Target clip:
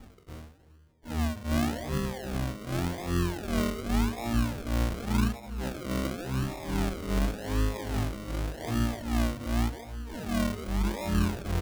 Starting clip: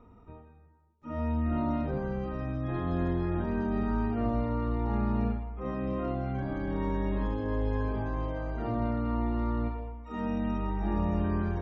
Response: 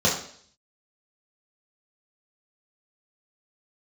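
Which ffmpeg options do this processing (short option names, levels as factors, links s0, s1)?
-filter_complex "[0:a]tiltshelf=f=1200:g=4,bandreject=f=93.45:t=h:w=4,bandreject=f=186.9:t=h:w=4,bandreject=f=280.35:t=h:w=4,bandreject=f=373.8:t=h:w=4,bandreject=f=467.25:t=h:w=4,bandreject=f=560.7:t=h:w=4,bandreject=f=654.15:t=h:w=4,bandreject=f=747.6:t=h:w=4,asplit=2[s0][s1];[s1]acompressor=threshold=0.0112:ratio=6,volume=0.944[s2];[s0][s2]amix=inputs=2:normalize=0,acrossover=split=490[s3][s4];[s3]aeval=exprs='val(0)*(1-1/2+1/2*cos(2*PI*2.5*n/s))':c=same[s5];[s4]aeval=exprs='val(0)*(1-1/2-1/2*cos(2*PI*2.5*n/s))':c=same[s6];[s5][s6]amix=inputs=2:normalize=0,acrusher=samples=41:mix=1:aa=0.000001:lfo=1:lforange=24.6:lforate=0.88,asplit=2[s7][s8];[s8]adelay=296,lowpass=f=820:p=1,volume=0.112,asplit=2[s9][s10];[s10]adelay=296,lowpass=f=820:p=1,volume=0.54,asplit=2[s11][s12];[s12]adelay=296,lowpass=f=820:p=1,volume=0.54,asplit=2[s13][s14];[s14]adelay=296,lowpass=f=820:p=1,volume=0.54[s15];[s7][s9][s11][s13][s15]amix=inputs=5:normalize=0"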